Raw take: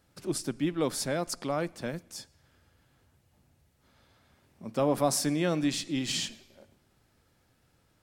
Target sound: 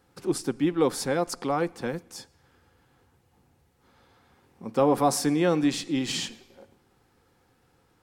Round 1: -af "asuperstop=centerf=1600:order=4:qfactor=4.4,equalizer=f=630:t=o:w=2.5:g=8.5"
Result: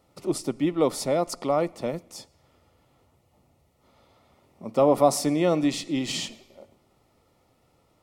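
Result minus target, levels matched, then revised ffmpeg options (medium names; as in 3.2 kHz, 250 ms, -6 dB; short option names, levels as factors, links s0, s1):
2 kHz band -4.0 dB
-af "asuperstop=centerf=620:order=4:qfactor=4.4,equalizer=f=630:t=o:w=2.5:g=8.5"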